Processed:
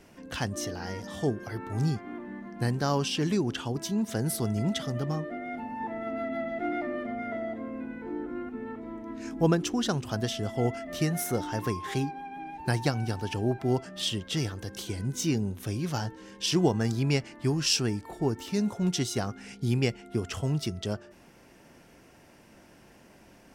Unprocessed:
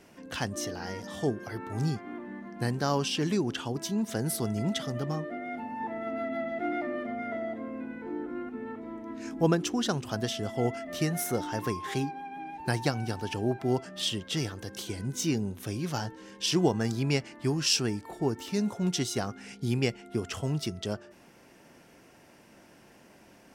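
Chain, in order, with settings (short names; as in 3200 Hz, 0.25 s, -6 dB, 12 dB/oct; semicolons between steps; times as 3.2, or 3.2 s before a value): low shelf 74 Hz +11 dB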